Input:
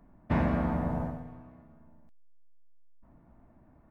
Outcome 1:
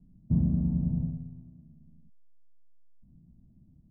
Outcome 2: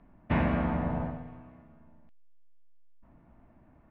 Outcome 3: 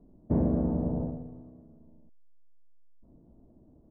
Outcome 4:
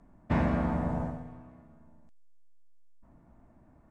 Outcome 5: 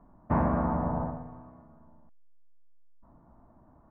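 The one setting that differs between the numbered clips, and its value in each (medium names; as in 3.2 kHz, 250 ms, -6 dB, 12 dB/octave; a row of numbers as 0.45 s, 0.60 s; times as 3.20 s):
resonant low-pass, frequency: 170 Hz, 2.9 kHz, 430 Hz, 8 kHz, 1.1 kHz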